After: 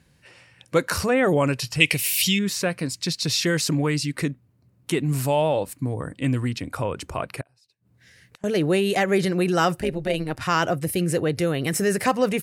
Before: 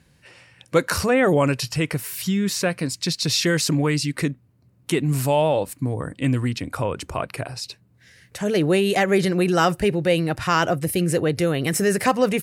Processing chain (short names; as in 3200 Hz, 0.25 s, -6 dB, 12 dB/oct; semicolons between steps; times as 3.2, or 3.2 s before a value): 1.8–2.39 resonant high shelf 1900 Hz +10 dB, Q 3; 7.41–8.44 flipped gate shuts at -28 dBFS, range -28 dB; 9.81–10.41 AM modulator 150 Hz, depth 60%; gain -2 dB